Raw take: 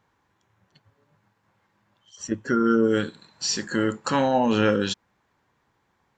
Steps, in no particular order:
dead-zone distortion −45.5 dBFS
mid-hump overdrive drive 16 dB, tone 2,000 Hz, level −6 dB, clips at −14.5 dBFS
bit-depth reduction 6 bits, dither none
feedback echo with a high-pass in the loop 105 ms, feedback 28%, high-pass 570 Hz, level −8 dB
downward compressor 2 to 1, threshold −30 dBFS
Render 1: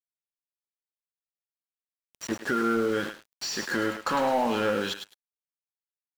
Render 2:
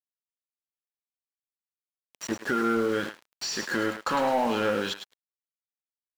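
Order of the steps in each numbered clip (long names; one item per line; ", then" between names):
bit-depth reduction, then downward compressor, then feedback echo with a high-pass in the loop, then mid-hump overdrive, then dead-zone distortion
bit-depth reduction, then downward compressor, then feedback echo with a high-pass in the loop, then dead-zone distortion, then mid-hump overdrive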